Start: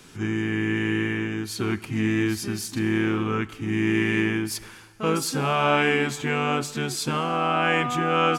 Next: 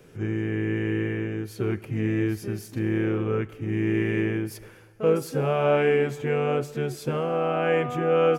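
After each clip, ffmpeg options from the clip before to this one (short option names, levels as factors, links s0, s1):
-af "equalizer=f=125:t=o:w=1:g=6,equalizer=f=250:t=o:w=1:g=-5,equalizer=f=500:t=o:w=1:g=12,equalizer=f=1000:t=o:w=1:g=-7,equalizer=f=4000:t=o:w=1:g=-9,equalizer=f=8000:t=o:w=1:g=-9,volume=0.668"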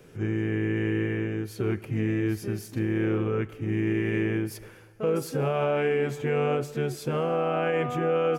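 -af "alimiter=limit=0.133:level=0:latency=1:release=58"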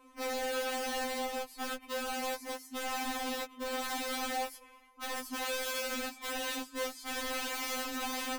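-af "afftfilt=real='real(if(between(b,1,1008),(2*floor((b-1)/24)+1)*24-b,b),0)':imag='imag(if(between(b,1,1008),(2*floor((b-1)/24)+1)*24-b,b),0)*if(between(b,1,1008),-1,1)':win_size=2048:overlap=0.75,aeval=exprs='(mod(17.8*val(0)+1,2)-1)/17.8':c=same,afftfilt=real='re*3.46*eq(mod(b,12),0)':imag='im*3.46*eq(mod(b,12),0)':win_size=2048:overlap=0.75,volume=0.596"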